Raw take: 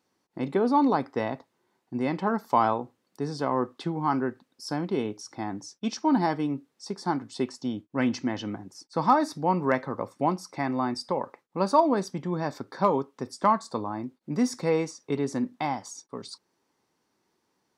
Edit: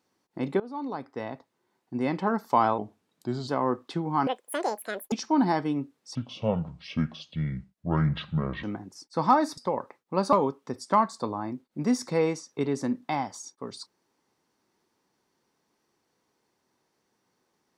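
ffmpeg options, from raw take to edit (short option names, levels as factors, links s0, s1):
-filter_complex "[0:a]asplit=10[s0][s1][s2][s3][s4][s5][s6][s7][s8][s9];[s0]atrim=end=0.6,asetpts=PTS-STARTPTS,afade=t=out:st=0.596:d=0.004:c=hsin:silence=0.1[s10];[s1]atrim=start=0.6:end=2.784,asetpts=PTS-STARTPTS,afade=t=in:d=1.44:silence=0.1[s11];[s2]atrim=start=2.78:end=3.38,asetpts=PTS-STARTPTS,asetrate=37926,aresample=44100,atrim=end_sample=30767,asetpts=PTS-STARTPTS[s12];[s3]atrim=start=3.376:end=4.174[s13];[s4]atrim=start=4.17:end=5.86,asetpts=PTS-STARTPTS,asetrate=87318,aresample=44100[s14];[s5]atrim=start=5.856:end=6.894[s15];[s6]atrim=start=6.89:end=8.43,asetpts=PTS-STARTPTS,asetrate=27342,aresample=44100[s16];[s7]atrim=start=8.426:end=9.372[s17];[s8]atrim=start=11.008:end=11.762[s18];[s9]atrim=start=12.838[s19];[s10][s11]concat=n=2:v=0:a=1[s20];[s20][s12]acrossfade=d=0.004:c1=hsin:c2=hsin[s21];[s21][s13]acrossfade=d=0.004:c1=hsin:c2=hsin[s22];[s22][s14]acrossfade=d=0.004:c1=hsin:c2=hsin[s23];[s23][s15]acrossfade=d=0.004:c1=hsin:c2=hsin[s24];[s24][s16]acrossfade=d=0.004:c1=hsin:c2=hsin[s25];[s25][s17]acrossfade=d=0.004:c1=hsin:c2=hsin[s26];[s26][s18]acrossfade=d=0.004:c1=hsin:c2=hsin[s27];[s27][s19]acrossfade=d=0.004:c1=hsin:c2=hsin"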